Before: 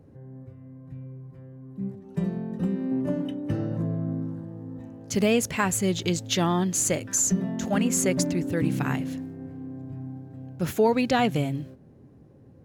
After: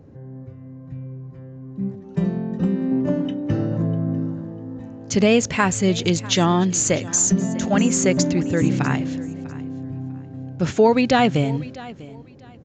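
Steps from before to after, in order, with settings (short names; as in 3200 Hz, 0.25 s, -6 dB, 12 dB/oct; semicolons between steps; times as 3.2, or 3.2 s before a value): on a send: feedback echo 0.647 s, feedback 23%, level -19 dB; on the sum: downsampling 16000 Hz; gain +6 dB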